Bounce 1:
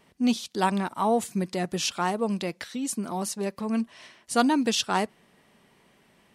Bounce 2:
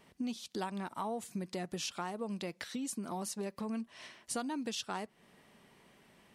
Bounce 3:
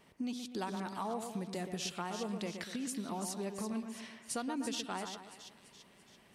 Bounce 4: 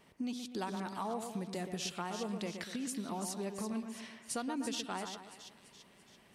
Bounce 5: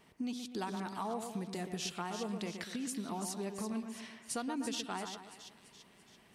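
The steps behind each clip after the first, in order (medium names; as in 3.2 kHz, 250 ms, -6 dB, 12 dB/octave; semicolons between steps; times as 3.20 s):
compression 6:1, threshold -34 dBFS, peak gain reduction 16.5 dB; trim -2 dB
two-band feedback delay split 2.6 kHz, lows 122 ms, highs 337 ms, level -7 dB; trim -1 dB
no audible change
band-stop 560 Hz, Q 12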